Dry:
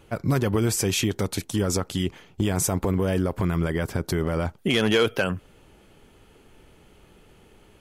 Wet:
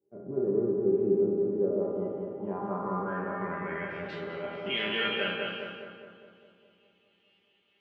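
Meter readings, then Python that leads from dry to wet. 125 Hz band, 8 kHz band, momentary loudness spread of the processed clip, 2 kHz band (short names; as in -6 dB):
-16.0 dB, under -40 dB, 11 LU, -4.0 dB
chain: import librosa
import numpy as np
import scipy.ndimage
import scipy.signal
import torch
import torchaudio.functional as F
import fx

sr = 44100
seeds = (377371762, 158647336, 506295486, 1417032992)

p1 = fx.spec_trails(x, sr, decay_s=1.33)
p2 = scipy.signal.sosfilt(scipy.signal.butter(2, 140.0, 'highpass', fs=sr, output='sos'), p1)
p3 = fx.hum_notches(p2, sr, base_hz=50, count=4)
p4 = fx.env_lowpass_down(p3, sr, base_hz=1900.0, full_db=-19.5)
p5 = fx.low_shelf(p4, sr, hz=390.0, db=-5.0)
p6 = fx.comb_fb(p5, sr, f0_hz=200.0, decay_s=0.29, harmonics='all', damping=0.0, mix_pct=90)
p7 = fx.filter_sweep_lowpass(p6, sr, from_hz=390.0, to_hz=3000.0, start_s=1.33, end_s=4.21, q=3.6)
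p8 = fx.doubler(p7, sr, ms=16.0, db=-11.5)
p9 = p8 + fx.echo_filtered(p8, sr, ms=206, feedback_pct=71, hz=2100.0, wet_db=-3, dry=0)
y = fx.band_widen(p9, sr, depth_pct=40)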